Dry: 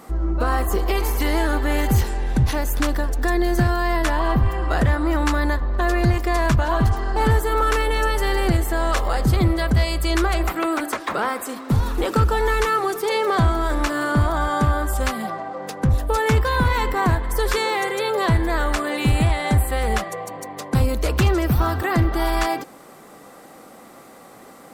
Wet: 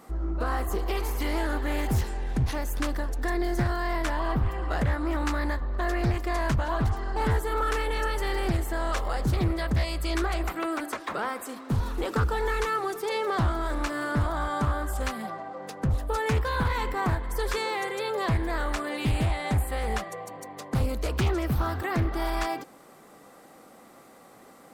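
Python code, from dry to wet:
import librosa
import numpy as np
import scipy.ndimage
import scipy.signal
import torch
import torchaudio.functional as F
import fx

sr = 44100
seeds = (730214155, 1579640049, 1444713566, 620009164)

y = fx.doppler_dist(x, sr, depth_ms=0.31)
y = F.gain(torch.from_numpy(y), -7.5).numpy()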